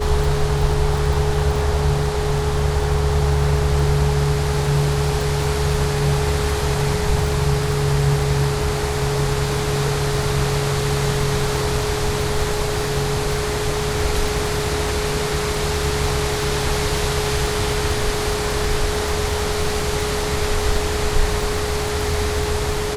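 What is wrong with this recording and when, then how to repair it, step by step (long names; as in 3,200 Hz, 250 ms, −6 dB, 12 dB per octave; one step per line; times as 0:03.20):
surface crackle 35 per second −24 dBFS
whistle 420 Hz −24 dBFS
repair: click removal
notch filter 420 Hz, Q 30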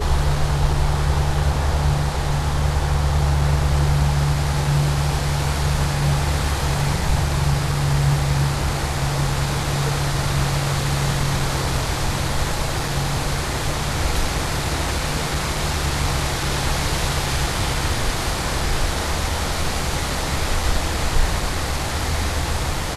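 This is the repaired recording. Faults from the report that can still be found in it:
none of them is left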